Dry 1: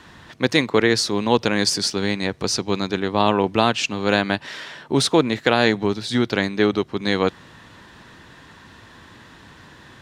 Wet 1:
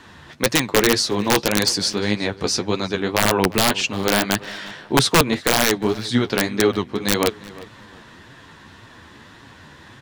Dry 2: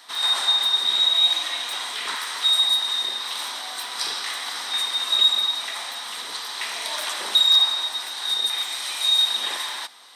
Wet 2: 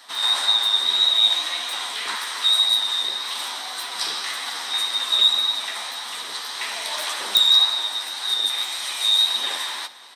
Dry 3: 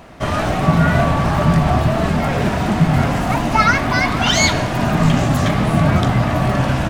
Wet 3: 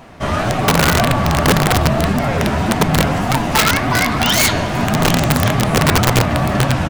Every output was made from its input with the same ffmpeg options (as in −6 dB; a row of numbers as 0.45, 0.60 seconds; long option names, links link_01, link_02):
-filter_complex "[0:a]flanger=delay=6.9:depth=8:regen=27:speed=1.8:shape=triangular,aeval=exprs='(mod(3.35*val(0)+1,2)-1)/3.35':channel_layout=same,asplit=2[link_01][link_02];[link_02]adelay=354,lowpass=frequency=3400:poles=1,volume=-18.5dB,asplit=2[link_03][link_04];[link_04]adelay=354,lowpass=frequency=3400:poles=1,volume=0.29[link_05];[link_03][link_05]amix=inputs=2:normalize=0[link_06];[link_01][link_06]amix=inputs=2:normalize=0,volume=4.5dB"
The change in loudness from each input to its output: +1.0, +1.0, +1.0 LU